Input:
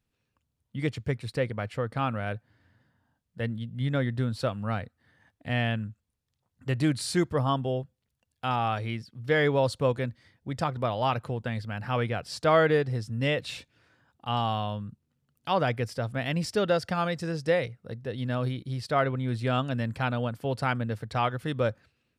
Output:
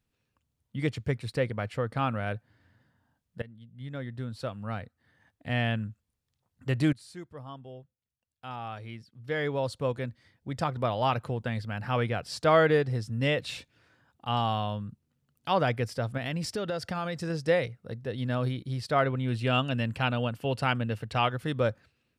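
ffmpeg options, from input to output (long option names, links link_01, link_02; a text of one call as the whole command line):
ffmpeg -i in.wav -filter_complex "[0:a]asettb=1/sr,asplit=3[link_01][link_02][link_03];[link_01]atrim=end=16.174[link_04];[link_02]atrim=start=16.17:end=17.3,asetpts=PTS-STARTPTS,afade=type=in:duration=0.004:curve=qsin,afade=type=out:start_time=1.126:duration=0.004:curve=qsin,acompressor=threshold=-28dB:ratio=5:attack=3.2:release=140:knee=1:detection=peak[link_05];[link_03]atrim=start=17.296[link_06];[link_04][link_05]acrossfade=duration=0.004:curve1=hsin:curve2=qsin[link_07];[link_07][link_06]acrossfade=duration=0.004:curve1=qsin:curve2=hsin,asettb=1/sr,asplit=3[link_08][link_09][link_10];[link_08]atrim=end=19.154[link_11];[link_09]atrim=start=19.15:end=21.3,asetpts=PTS-STARTPTS,afade=type=in:duration=0.004:curve=qsin,afade=type=out:start_time=2.146:duration=0.004:curve=qsin,equalizer=frequency=2800:width=6.2:gain=11.5[link_12];[link_10]atrim=start=21.296[link_13];[link_11][link_12]acrossfade=duration=0.004:curve1=hsin:curve2=qsin[link_14];[link_14][link_13]acrossfade=duration=0.004:curve1=qsin:curve2=hsin,asplit=3[link_15][link_16][link_17];[link_15]atrim=end=3.42,asetpts=PTS-STARTPTS,afade=type=out:start_time=3.416:duration=0.004:curve=hsin:silence=0.1[link_18];[link_16]atrim=start=3.42:end=6.93,asetpts=PTS-STARTPTS,afade=type=in:duration=2.39:silence=0.1,afade=type=out:start_time=3.506:duration=0.004:curve=hsin:silence=0.125893[link_19];[link_17]atrim=start=6.93,asetpts=PTS-STARTPTS,afade=type=in:duration=3.94:curve=qua:silence=0.125893[link_20];[link_18][link_19][link_20]concat=n=3:v=0:a=1" out.wav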